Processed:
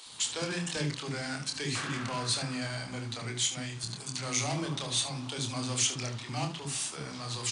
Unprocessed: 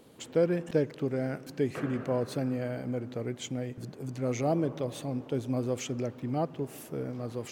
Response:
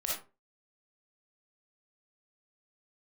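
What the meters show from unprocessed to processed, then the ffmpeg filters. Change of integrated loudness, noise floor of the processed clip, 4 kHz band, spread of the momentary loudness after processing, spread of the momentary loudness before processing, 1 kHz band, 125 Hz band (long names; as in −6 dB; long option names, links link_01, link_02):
0.0 dB, −43 dBFS, +15.0 dB, 7 LU, 8 LU, +1.0 dB, −1.5 dB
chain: -filter_complex "[0:a]equalizer=frequency=250:width_type=o:width=1:gain=-4,equalizer=frequency=500:width_type=o:width=1:gain=-11,equalizer=frequency=1000:width_type=o:width=1:gain=7,equalizer=frequency=4000:width_type=o:width=1:gain=9,acrossover=split=340[link_01][link_02];[link_01]adelay=60[link_03];[link_03][link_02]amix=inputs=2:normalize=0,acrossover=split=400[link_04][link_05];[link_05]asoftclip=type=tanh:threshold=-37.5dB[link_06];[link_04][link_06]amix=inputs=2:normalize=0,crystalizer=i=6:c=0,asplit=2[link_07][link_08];[link_08]aecho=0:1:27|74:0.531|0.282[link_09];[link_07][link_09]amix=inputs=2:normalize=0" -ar 32000 -c:a mp2 -b:a 192k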